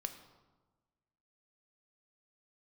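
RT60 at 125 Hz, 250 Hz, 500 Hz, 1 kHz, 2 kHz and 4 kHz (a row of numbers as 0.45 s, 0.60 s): 1.6 s, 1.5 s, 1.3 s, 1.2 s, 0.90 s, 0.75 s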